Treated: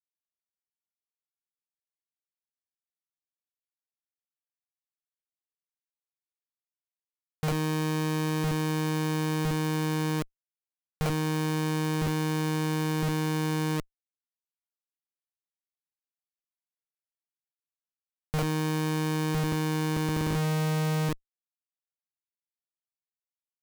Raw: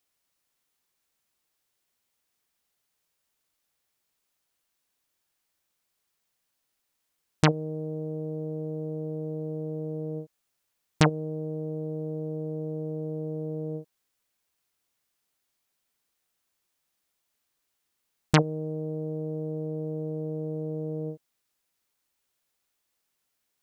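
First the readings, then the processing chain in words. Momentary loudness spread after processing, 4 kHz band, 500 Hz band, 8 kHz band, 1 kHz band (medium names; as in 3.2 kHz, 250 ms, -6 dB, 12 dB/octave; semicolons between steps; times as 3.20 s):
4 LU, +3.5 dB, -2.0 dB, +5.5 dB, +4.0 dB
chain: feedback delay 1009 ms, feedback 51%, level -23 dB; fuzz box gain 36 dB, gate -37 dBFS; power-law waveshaper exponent 1.4; Schmitt trigger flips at -25 dBFS; trim -2 dB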